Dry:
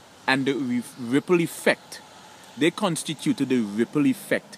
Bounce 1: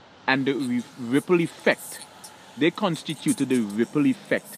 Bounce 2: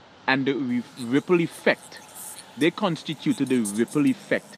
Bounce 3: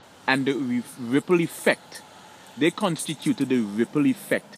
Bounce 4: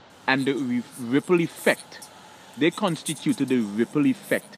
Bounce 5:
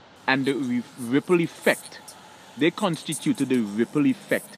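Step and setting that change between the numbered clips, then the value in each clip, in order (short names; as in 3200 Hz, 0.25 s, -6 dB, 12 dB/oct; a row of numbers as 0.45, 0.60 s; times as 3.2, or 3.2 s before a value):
bands offset in time, time: 320, 690, 30, 100, 160 ms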